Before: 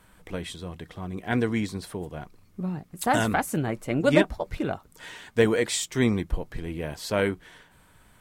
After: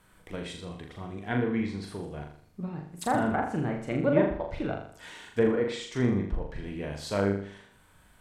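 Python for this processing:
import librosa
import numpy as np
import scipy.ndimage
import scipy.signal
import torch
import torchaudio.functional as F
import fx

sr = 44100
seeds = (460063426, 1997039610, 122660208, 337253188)

y = fx.env_lowpass_down(x, sr, base_hz=1300.0, full_db=-19.5)
y = fx.room_flutter(y, sr, wall_m=6.9, rt60_s=0.56)
y = y * librosa.db_to_amplitude(-4.5)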